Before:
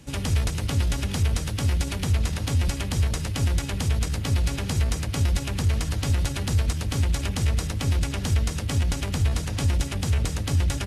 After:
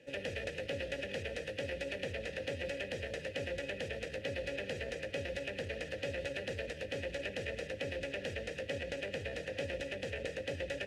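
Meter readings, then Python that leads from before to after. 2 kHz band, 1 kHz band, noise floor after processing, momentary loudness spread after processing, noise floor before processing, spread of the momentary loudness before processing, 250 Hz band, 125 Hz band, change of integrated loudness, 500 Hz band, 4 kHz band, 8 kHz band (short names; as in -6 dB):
-4.0 dB, -15.0 dB, -47 dBFS, 1 LU, -31 dBFS, 1 LU, -15.5 dB, -24.5 dB, -14.0 dB, +0.5 dB, -11.0 dB, -21.5 dB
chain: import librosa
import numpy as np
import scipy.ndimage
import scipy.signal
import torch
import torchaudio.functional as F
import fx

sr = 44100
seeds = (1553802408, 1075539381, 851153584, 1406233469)

y = fx.vowel_filter(x, sr, vowel='e')
y = y + 10.0 ** (-13.5 / 20.0) * np.pad(y, (int(128 * sr / 1000.0), 0))[:len(y)]
y = y * librosa.db_to_amplitude(6.0)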